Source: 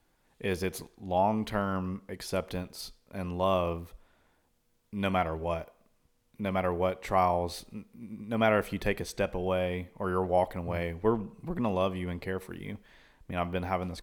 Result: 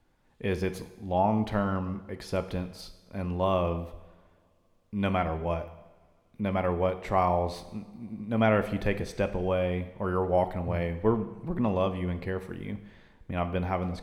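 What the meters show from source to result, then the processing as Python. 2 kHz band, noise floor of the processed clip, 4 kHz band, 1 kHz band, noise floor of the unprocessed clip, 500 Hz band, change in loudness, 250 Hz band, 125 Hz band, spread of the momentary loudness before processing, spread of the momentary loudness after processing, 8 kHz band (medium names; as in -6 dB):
-0.5 dB, -66 dBFS, -2.0 dB, +0.5 dB, -71 dBFS, +1.5 dB, +1.5 dB, +3.0 dB, +4.5 dB, 14 LU, 13 LU, no reading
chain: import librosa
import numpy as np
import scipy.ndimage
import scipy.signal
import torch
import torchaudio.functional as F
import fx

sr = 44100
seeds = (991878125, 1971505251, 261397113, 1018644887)

y = fx.lowpass(x, sr, hz=4000.0, slope=6)
y = fx.low_shelf(y, sr, hz=270.0, db=4.5)
y = fx.rev_double_slope(y, sr, seeds[0], early_s=0.93, late_s=2.7, knee_db=-19, drr_db=10.0)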